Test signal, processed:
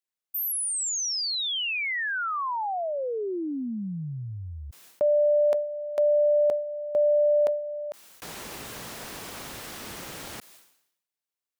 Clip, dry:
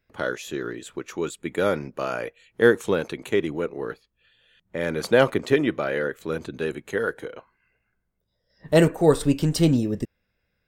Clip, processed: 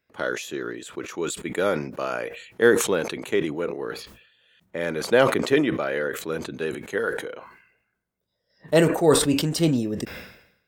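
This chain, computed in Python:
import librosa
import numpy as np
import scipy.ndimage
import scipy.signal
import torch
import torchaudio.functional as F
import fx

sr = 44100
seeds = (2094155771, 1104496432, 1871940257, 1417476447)

y = fx.highpass(x, sr, hz=200.0, slope=6)
y = fx.sustainer(y, sr, db_per_s=77.0)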